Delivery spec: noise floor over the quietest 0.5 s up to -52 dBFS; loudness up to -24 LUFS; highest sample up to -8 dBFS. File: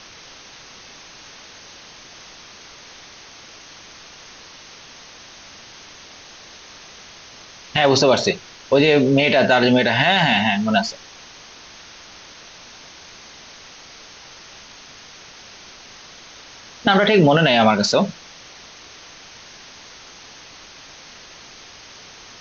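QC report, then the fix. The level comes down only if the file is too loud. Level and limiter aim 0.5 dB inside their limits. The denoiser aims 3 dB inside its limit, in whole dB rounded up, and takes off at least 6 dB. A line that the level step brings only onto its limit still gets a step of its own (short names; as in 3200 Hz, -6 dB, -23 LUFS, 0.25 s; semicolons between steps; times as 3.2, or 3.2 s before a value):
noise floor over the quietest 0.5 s -42 dBFS: fail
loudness -16.5 LUFS: fail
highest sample -4.5 dBFS: fail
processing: denoiser 6 dB, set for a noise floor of -42 dBFS; gain -8 dB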